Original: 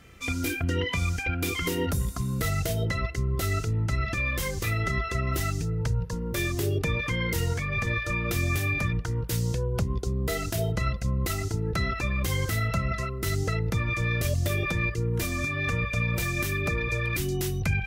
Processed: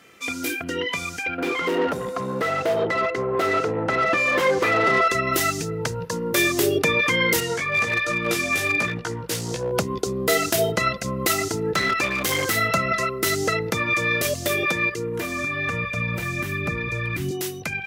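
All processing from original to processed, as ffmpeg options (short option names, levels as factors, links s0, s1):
-filter_complex "[0:a]asettb=1/sr,asplit=3[s0][s1][s2];[s0]atrim=end=1.384[s3];[s1]atrim=start=1.38:end=5.08,asetpts=PTS-STARTPTS,afade=t=in:d=0.004:c=qsin,afade=t=out:st=3.696:d=0.004:c=qsin,highshelf=f=2900:g=-11,aeval=exprs='val(0)+0.00562*sin(2*PI*510*n/s)':c=same,asplit=2[s4][s5];[s5]highpass=f=720:p=1,volume=14.1,asoftclip=type=tanh:threshold=0.15[s6];[s4][s6]amix=inputs=2:normalize=0,lowpass=f=1100:p=1,volume=0.501[s7];[s2]atrim=start=5.076[s8];[s3][s7]acrossfade=d=0.004:c1=hsin:c2=qsin[s9];[s9][s8]acrossfade=d=0.004:c1=qsin:c2=hsin,asettb=1/sr,asplit=3[s10][s11][s12];[s10]atrim=end=7.404[s13];[s11]atrim=start=7.4:end=9.72,asetpts=PTS-STARTPTS,afade=t=in:d=0.004:c=qsin,afade=t=out:st=2.316:d=0.004:c=qsin,flanger=delay=16.5:depth=2.4:speed=1.3,lowpass=11000,volume=15,asoftclip=hard,volume=0.0668[s14];[s12]atrim=start=9.716[s15];[s13][s14]acrossfade=d=0.004:c1=hsin:c2=qsin[s16];[s16][s15]acrossfade=d=0.004:c1=qsin:c2=hsin,asettb=1/sr,asplit=3[s17][s18][s19];[s17]atrim=end=11.754[s20];[s18]atrim=start=11.75:end=12.56,asetpts=PTS-STARTPTS,afade=t=in:d=0.004:c=qsin,afade=t=out:st=0.806:d=0.004:c=qsin,bandreject=f=660:w=13,volume=16.8,asoftclip=hard,volume=0.0596[s21];[s19]atrim=start=12.556[s22];[s20][s21]acrossfade=d=0.004:c1=hsin:c2=qsin[s23];[s23][s22]acrossfade=d=0.004:c1=qsin:c2=hsin,asettb=1/sr,asplit=3[s24][s25][s26];[s24]atrim=end=15.124[s27];[s25]atrim=start=15.12:end=17.31,asetpts=PTS-STARTPTS,afade=t=in:d=0.004:c=qsin,afade=t=out:st=2.186:d=0.004:c=qsin,acrossover=split=2600[s28][s29];[s29]acompressor=threshold=0.00794:ratio=4:attack=1:release=60[s30];[s28][s30]amix=inputs=2:normalize=0,asubboost=boost=11:cutoff=180[s31];[s26]atrim=start=17.306[s32];[s27][s31]acrossfade=d=0.004:c1=hsin:c2=qsin[s33];[s33][s32]acrossfade=d=0.004:c1=qsin:c2=hsin,highpass=280,dynaudnorm=f=450:g=17:m=2.24,volume=1.58"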